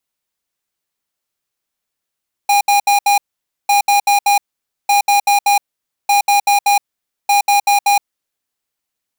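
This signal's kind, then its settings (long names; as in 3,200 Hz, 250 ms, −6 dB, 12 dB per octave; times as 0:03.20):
beeps in groups square 812 Hz, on 0.12 s, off 0.07 s, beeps 4, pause 0.51 s, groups 5, −11.5 dBFS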